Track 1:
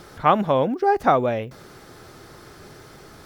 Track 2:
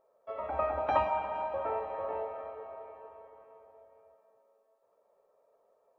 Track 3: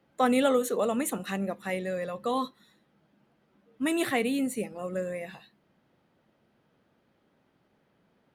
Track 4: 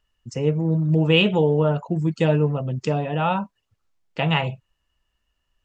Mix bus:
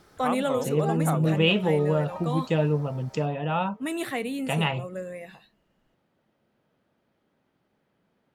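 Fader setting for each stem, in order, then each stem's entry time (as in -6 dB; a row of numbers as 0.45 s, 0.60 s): -12.5 dB, -14.5 dB, -3.0 dB, -4.5 dB; 0.00 s, 1.20 s, 0.00 s, 0.30 s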